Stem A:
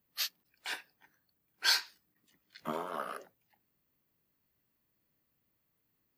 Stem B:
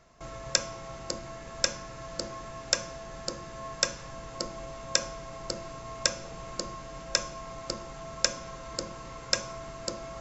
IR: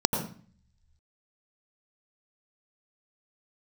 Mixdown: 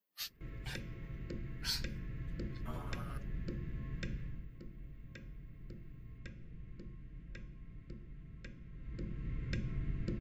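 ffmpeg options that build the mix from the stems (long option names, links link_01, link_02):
-filter_complex "[0:a]highpass=260,asplit=2[link_01][link_02];[link_02]adelay=6.8,afreqshift=-0.63[link_03];[link_01][link_03]amix=inputs=2:normalize=1,volume=-5.5dB[link_04];[1:a]firequalizer=gain_entry='entry(410,0);entry(710,-27);entry(1900,-2);entry(5600,-29)':delay=0.05:min_phase=1,adelay=200,volume=9dB,afade=type=out:start_time=4.14:duration=0.34:silence=0.281838,afade=type=in:start_time=8.71:duration=0.75:silence=0.237137[link_05];[link_04][link_05]amix=inputs=2:normalize=0,asubboost=boost=4:cutoff=220,acrossover=split=440|3000[link_06][link_07][link_08];[link_07]acompressor=threshold=-47dB:ratio=6[link_09];[link_06][link_09][link_08]amix=inputs=3:normalize=0"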